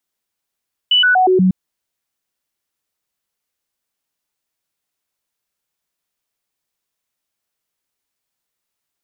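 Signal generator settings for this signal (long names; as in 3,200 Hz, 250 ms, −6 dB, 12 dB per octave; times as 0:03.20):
stepped sweep 2,970 Hz down, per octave 1, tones 5, 0.12 s, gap 0.00 s −9 dBFS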